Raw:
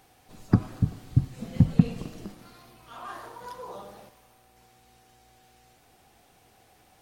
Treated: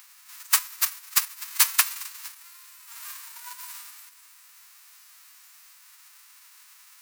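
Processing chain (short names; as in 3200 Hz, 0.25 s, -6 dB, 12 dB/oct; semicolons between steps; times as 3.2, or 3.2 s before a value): spectral whitening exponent 0.1; elliptic high-pass 950 Hz, stop band 40 dB; bell 3300 Hz -5 dB 0.34 oct; in parallel at 0 dB: upward compressor, threshold -38 dBFS; on the sum: gain -5 dB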